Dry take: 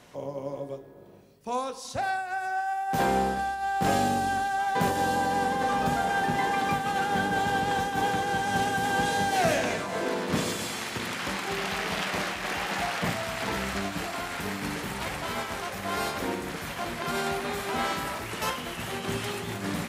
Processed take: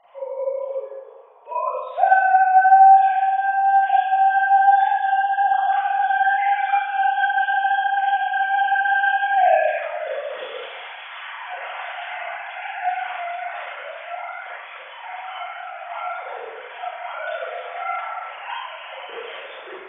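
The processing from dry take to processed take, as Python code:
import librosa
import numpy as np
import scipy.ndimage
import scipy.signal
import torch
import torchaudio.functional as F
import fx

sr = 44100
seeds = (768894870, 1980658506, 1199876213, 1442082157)

p1 = fx.sine_speech(x, sr)
p2 = fx.dmg_noise_band(p1, sr, seeds[0], low_hz=580.0, high_hz=1100.0, level_db=-62.0)
p3 = p2 + fx.echo_single(p2, sr, ms=228, db=-16.0, dry=0)
y = fx.rev_schroeder(p3, sr, rt60_s=0.82, comb_ms=33, drr_db=-9.0)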